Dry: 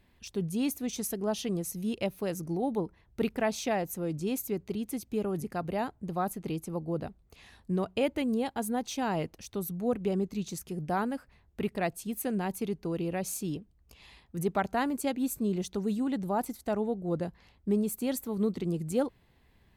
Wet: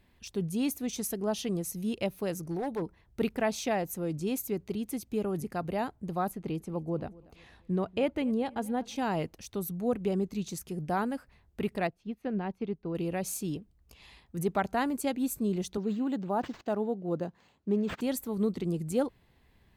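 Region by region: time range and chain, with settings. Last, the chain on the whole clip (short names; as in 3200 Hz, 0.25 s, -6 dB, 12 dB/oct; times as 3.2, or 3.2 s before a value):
2.37–2.82 bell 240 Hz -5.5 dB 0.67 oct + hard clip -27.5 dBFS
6.31–8.96 high shelf 4900 Hz -11 dB + feedback echo 0.237 s, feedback 37%, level -22 dB
11.87–12.95 air absorption 270 m + upward expander, over -50 dBFS
15.77–18.01 HPF 160 Hz + bell 2100 Hz -5.5 dB 0.39 oct + decimation joined by straight lines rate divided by 4×
whole clip: dry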